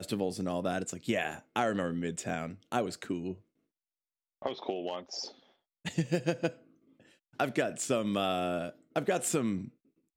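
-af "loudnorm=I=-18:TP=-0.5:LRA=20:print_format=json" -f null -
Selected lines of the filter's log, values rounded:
"input_i" : "-33.3",
"input_tp" : "-14.5",
"input_lra" : "5.1",
"input_thresh" : "-43.7",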